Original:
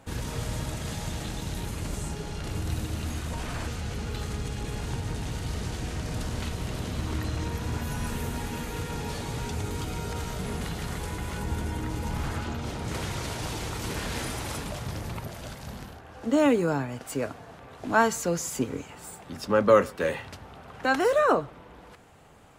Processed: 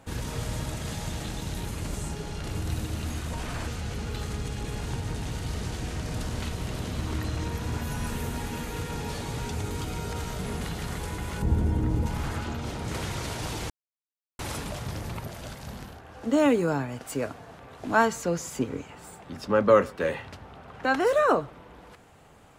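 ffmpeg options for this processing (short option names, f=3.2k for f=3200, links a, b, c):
-filter_complex "[0:a]asettb=1/sr,asplit=3[a][b][c];[a]atrim=end=11.424[d];[b]atrim=start=11.42:end=12.06,asetpts=PTS-STARTPTS,afade=t=in:d=0.004:c=qsin,afade=t=out:st=0.636:d=0.004:c=qsin,tiltshelf=f=750:g=7.5[e];[c]atrim=start=12.056[f];[d][e]acrossfade=d=0.004:c1=hsin:c2=qsin[g];[g][f]acrossfade=d=0.004:c1=qsin:c2=hsin,asettb=1/sr,asplit=3[h][i][j];[h]atrim=end=18.054[k];[i]atrim=start=18.05:end=21.07,asetpts=PTS-STARTPTS,afade=t=in:d=0.004:c=qsin,afade=t=out:st=3.016:d=0.004:c=qsin,highshelf=f=5.5k:g=-7.5[l];[j]atrim=start=21.066[m];[k][l]acrossfade=d=0.004:c1=hsin:c2=qsin[n];[n][m]acrossfade=d=0.004:c1=qsin:c2=hsin,asplit=3[o][p][q];[o]atrim=end=13.7,asetpts=PTS-STARTPTS,afade=t=out:st=13.696:d=0.004:c=hsin[r];[p]atrim=start=13.7:end=14.39,asetpts=PTS-STARTPTS,volume=0[s];[q]atrim=start=14.39,asetpts=PTS-STARTPTS,afade=t=in:d=0.004:c=hsin[t];[r][s][t]concat=n=3:v=0:a=1"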